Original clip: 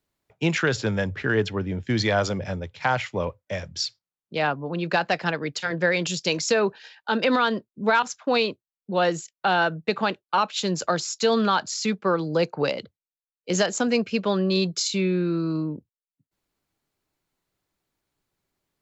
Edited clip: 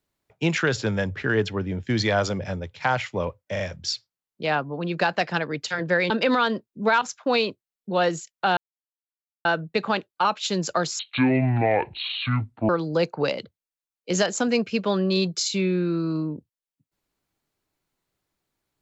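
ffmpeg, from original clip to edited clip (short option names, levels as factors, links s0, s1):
-filter_complex "[0:a]asplit=7[s0][s1][s2][s3][s4][s5][s6];[s0]atrim=end=3.562[s7];[s1]atrim=start=3.518:end=3.562[s8];[s2]atrim=start=3.518:end=6.022[s9];[s3]atrim=start=7.108:end=9.58,asetpts=PTS-STARTPTS,afade=t=out:st=2.468:d=0.004:c=hsin,apad=pad_dur=0.88[s10];[s4]atrim=start=9.58:end=11.124,asetpts=PTS-STARTPTS,afade=t=in:d=0.004:c=hsin[s11];[s5]atrim=start=11.12:end=12.09,asetpts=PTS-STARTPTS,asetrate=25137,aresample=44100,atrim=end_sample=75047,asetpts=PTS-STARTPTS[s12];[s6]atrim=start=12.086[s13];[s7][s8]acrossfade=d=0.004:c1=hsin:c2=hsin[s14];[s14][s9]acrossfade=d=0.004:c1=hsin:c2=hsin[s15];[s10][s11]concat=n=2:v=0:a=1[s16];[s15][s16]acrossfade=d=0.004:c1=hsin:c2=hsin[s17];[s17][s12]acrossfade=d=0.004:c1=hsin:c2=hsin[s18];[s18][s13]acrossfade=d=0.004:c1=hsin:c2=hsin"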